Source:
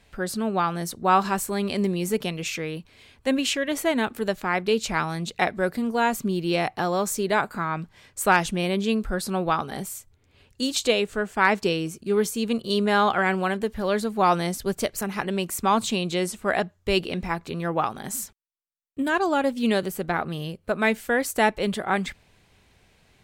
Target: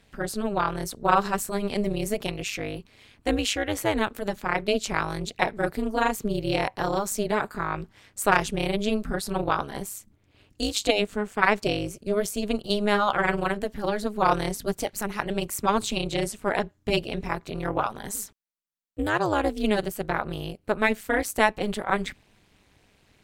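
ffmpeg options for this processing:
ffmpeg -i in.wav -af "tremolo=f=210:d=0.974,volume=2.5dB" out.wav

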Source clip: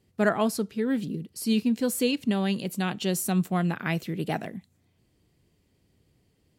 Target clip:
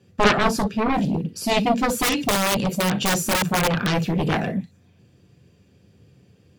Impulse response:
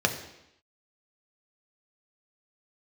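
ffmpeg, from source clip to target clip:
-filter_complex "[1:a]atrim=start_sample=2205,atrim=end_sample=3087[link_01];[0:a][link_01]afir=irnorm=-1:irlink=0,aeval=exprs='1.19*(cos(1*acos(clip(val(0)/1.19,-1,1)))-cos(1*PI/2))+0.266*(cos(3*acos(clip(val(0)/1.19,-1,1)))-cos(3*PI/2))+0.335*(cos(7*acos(clip(val(0)/1.19,-1,1)))-cos(7*PI/2))':channel_layout=same,asettb=1/sr,asplit=3[link_02][link_03][link_04];[link_02]atrim=end=2.034[link_05];[link_03]atrim=start=2.03:end=3.9,asetpts=PTS-STARTPTS,afade=type=in:duration=0.004:curve=qsin,afade=type=out:start_time=1.866:duration=0.004:curve=qsin,aeval=exprs='(mod(2.37*val(0)+1,2)-1)/2.37':channel_layout=same[link_06];[link_04]atrim=start=3.896[link_07];[link_05][link_06]acrossfade=duration=0.004:curve1=hsin:curve2=qsin[link_08];[link_08][link_07]acrossfade=duration=0.004:curve1=qsin:curve2=hsin,volume=-5.5dB"

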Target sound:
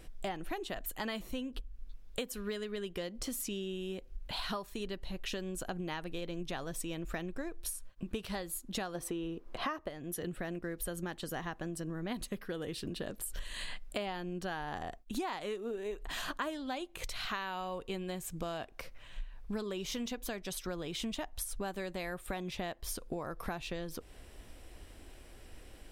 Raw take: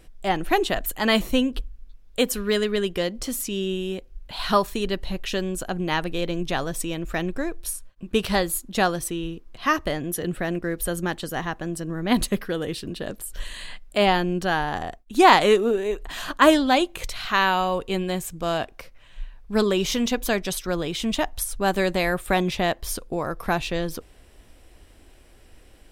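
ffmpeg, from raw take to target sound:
ffmpeg -i in.wav -filter_complex "[0:a]asplit=3[link_01][link_02][link_03];[link_01]afade=type=out:start_time=8.94:duration=0.02[link_04];[link_02]equalizer=frequency=670:width_type=o:width=2.9:gain=11.5,afade=type=in:start_time=8.94:duration=0.02,afade=type=out:start_time=9.88:duration=0.02[link_05];[link_03]afade=type=in:start_time=9.88:duration=0.02[link_06];[link_04][link_05][link_06]amix=inputs=3:normalize=0,acompressor=threshold=-34dB:ratio=12,volume=-1dB" out.wav

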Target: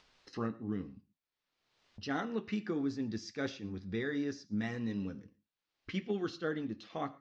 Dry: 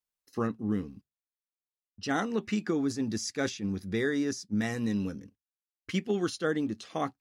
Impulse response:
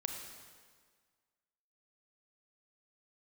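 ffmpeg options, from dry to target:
-filter_complex "[0:a]lowpass=frequency=4900:width=0.5412,lowpass=frequency=4900:width=1.3066,acompressor=mode=upward:threshold=-35dB:ratio=2.5,flanger=delay=6.5:depth=3.4:regen=-62:speed=1.4:shape=triangular,asplit=2[link_01][link_02];[1:a]atrim=start_sample=2205,atrim=end_sample=6174[link_03];[link_02][link_03]afir=irnorm=-1:irlink=0,volume=-7.5dB[link_04];[link_01][link_04]amix=inputs=2:normalize=0,volume=-5dB"

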